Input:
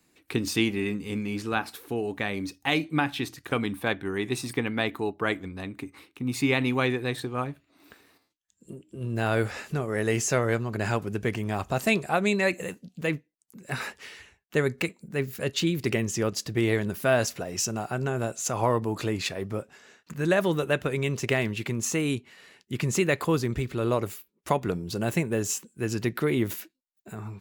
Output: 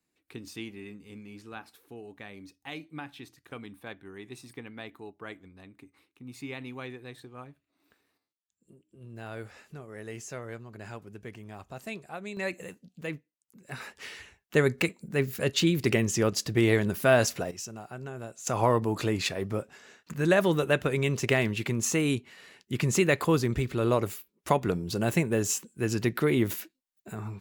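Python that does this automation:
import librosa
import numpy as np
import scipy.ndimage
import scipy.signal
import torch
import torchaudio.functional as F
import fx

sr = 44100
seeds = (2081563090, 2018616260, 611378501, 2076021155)

y = fx.gain(x, sr, db=fx.steps((0.0, -15.0), (12.37, -8.0), (13.97, 1.5), (17.51, -11.0), (18.47, 0.5)))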